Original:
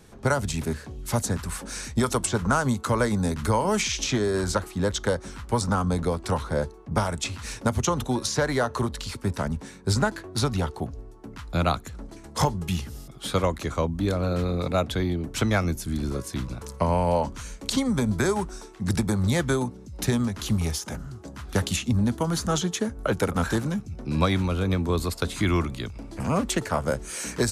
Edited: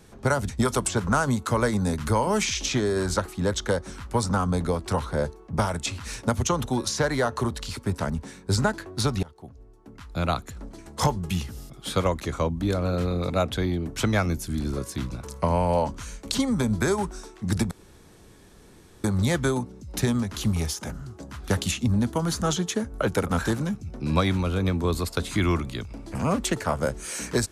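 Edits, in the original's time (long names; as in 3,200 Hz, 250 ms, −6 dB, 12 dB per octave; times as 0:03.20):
0:00.49–0:01.87: remove
0:10.61–0:11.98: fade in, from −22 dB
0:19.09: splice in room tone 1.33 s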